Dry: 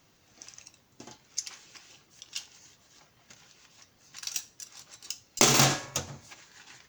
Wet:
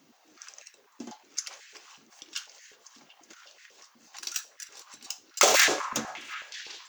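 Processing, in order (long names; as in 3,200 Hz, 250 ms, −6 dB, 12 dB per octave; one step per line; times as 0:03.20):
echo through a band-pass that steps 370 ms, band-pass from 1,400 Hz, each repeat 0.7 octaves, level −11 dB
high-pass on a step sequencer 8.1 Hz 240–1,800 Hz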